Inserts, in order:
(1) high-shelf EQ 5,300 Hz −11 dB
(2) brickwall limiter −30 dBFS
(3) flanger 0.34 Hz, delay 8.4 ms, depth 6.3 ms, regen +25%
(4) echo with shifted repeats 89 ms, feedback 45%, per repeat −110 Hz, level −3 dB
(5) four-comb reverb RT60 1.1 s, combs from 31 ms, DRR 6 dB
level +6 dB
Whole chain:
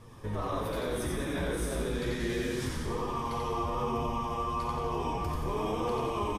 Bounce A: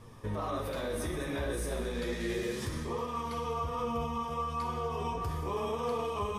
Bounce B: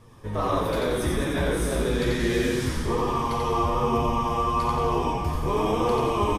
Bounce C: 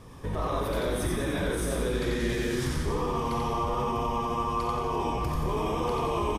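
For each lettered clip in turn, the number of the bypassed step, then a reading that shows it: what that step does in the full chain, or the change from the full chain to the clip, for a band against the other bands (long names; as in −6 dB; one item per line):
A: 4, echo-to-direct ratio 0.0 dB to −6.0 dB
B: 2, average gain reduction 7.0 dB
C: 3, change in integrated loudness +3.5 LU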